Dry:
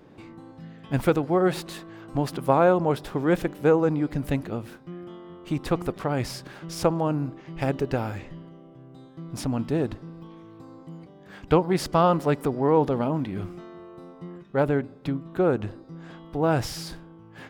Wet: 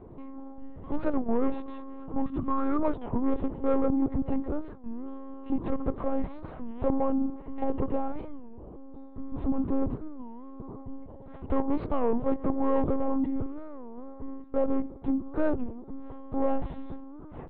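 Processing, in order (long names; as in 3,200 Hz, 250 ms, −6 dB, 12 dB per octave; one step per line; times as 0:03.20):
0:02.22–0:02.82: flat-topped bell 640 Hz −16 dB 1 octave
soft clipping −25 dBFS, distortion −7 dB
Savitzky-Golay smoothing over 65 samples
one-pitch LPC vocoder at 8 kHz 270 Hz
wow of a warped record 33 1/3 rpm, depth 250 cents
level +4.5 dB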